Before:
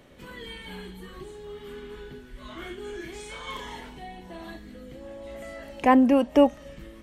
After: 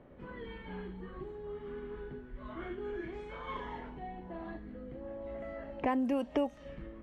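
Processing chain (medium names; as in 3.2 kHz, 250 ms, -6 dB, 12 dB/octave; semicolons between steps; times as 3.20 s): level-controlled noise filter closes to 1.2 kHz, open at -15 dBFS; compression 4:1, threshold -28 dBFS, peak gain reduction 13 dB; trim -2 dB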